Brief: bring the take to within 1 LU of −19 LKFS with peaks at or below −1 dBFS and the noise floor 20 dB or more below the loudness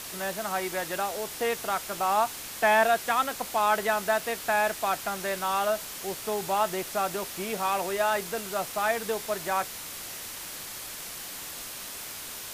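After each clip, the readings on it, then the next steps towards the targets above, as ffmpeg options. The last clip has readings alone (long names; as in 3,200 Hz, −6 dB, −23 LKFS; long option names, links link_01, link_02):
background noise floor −40 dBFS; target noise floor −49 dBFS; integrated loudness −28.5 LKFS; sample peak −11.5 dBFS; target loudness −19.0 LKFS
→ -af "afftdn=noise_reduction=9:noise_floor=-40"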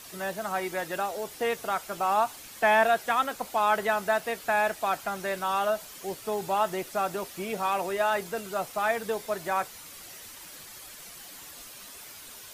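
background noise floor −46 dBFS; target noise floor −49 dBFS
→ -af "afftdn=noise_reduction=6:noise_floor=-46"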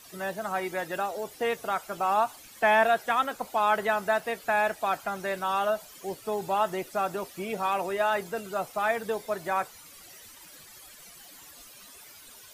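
background noise floor −50 dBFS; integrated loudness −28.5 LKFS; sample peak −12.0 dBFS; target loudness −19.0 LKFS
→ -af "volume=9.5dB"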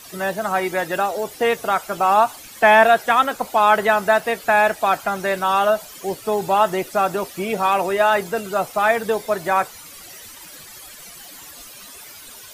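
integrated loudness −19.0 LKFS; sample peak −2.5 dBFS; background noise floor −41 dBFS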